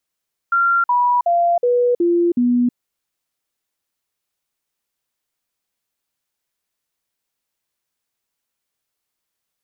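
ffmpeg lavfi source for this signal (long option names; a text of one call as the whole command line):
ffmpeg -f lavfi -i "aevalsrc='0.237*clip(min(mod(t,0.37),0.32-mod(t,0.37))/0.005,0,1)*sin(2*PI*1380*pow(2,-floor(t/0.37)/2)*mod(t,0.37))':duration=2.22:sample_rate=44100" out.wav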